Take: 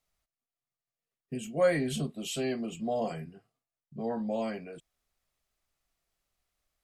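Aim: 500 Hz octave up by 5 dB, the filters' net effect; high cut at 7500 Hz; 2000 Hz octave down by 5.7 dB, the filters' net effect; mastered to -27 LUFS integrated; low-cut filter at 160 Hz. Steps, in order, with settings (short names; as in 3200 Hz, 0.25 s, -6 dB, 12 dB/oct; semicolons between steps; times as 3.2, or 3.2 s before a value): HPF 160 Hz; LPF 7500 Hz; bell 500 Hz +6 dB; bell 2000 Hz -7.5 dB; gain +1.5 dB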